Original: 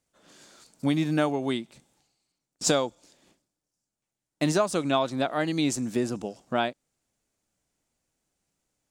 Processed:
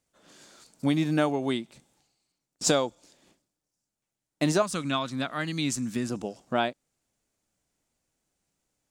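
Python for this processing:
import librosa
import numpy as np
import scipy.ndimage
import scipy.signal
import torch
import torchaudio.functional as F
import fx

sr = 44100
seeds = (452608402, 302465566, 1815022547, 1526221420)

y = fx.band_shelf(x, sr, hz=530.0, db=-9.0, octaves=1.7, at=(4.62, 6.1))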